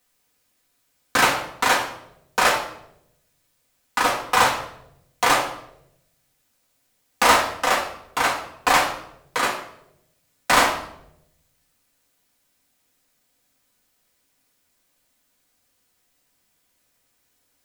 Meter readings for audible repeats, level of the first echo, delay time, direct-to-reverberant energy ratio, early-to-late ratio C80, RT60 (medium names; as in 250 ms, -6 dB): no echo, no echo, no echo, -3.0 dB, 10.0 dB, 0.80 s